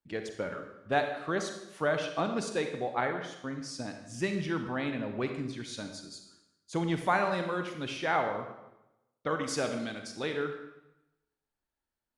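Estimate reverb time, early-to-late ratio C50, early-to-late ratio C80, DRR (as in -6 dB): 0.90 s, 6.5 dB, 8.5 dB, 5.5 dB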